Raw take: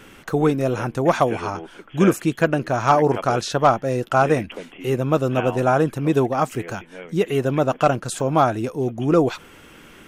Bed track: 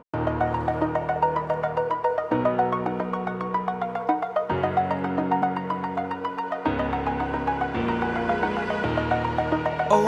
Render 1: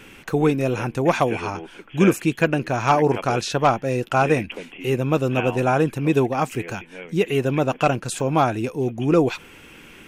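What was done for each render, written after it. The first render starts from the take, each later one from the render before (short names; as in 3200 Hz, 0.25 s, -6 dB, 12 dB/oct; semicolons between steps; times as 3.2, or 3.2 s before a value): thirty-one-band EQ 630 Hz -4 dB, 1250 Hz -4 dB, 2500 Hz +7 dB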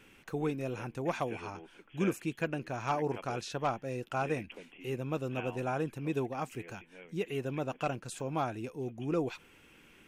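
gain -14.5 dB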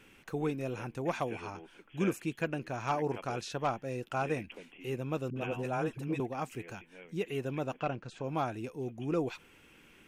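5.3–6.2 dispersion highs, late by 61 ms, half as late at 420 Hz; 7.79–8.24 air absorption 160 m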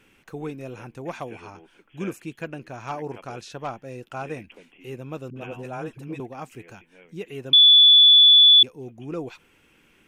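7.53–8.63 bleep 3450 Hz -9 dBFS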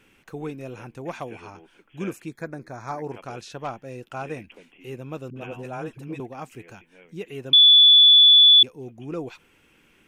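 2.28–3.04 Butterworth band-stop 2900 Hz, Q 1.9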